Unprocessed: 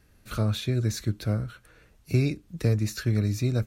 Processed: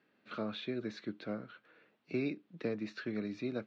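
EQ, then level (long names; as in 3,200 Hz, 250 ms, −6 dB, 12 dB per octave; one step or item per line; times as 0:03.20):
high-pass filter 210 Hz 24 dB per octave
low-pass filter 3,600 Hz 24 dB per octave
−6.0 dB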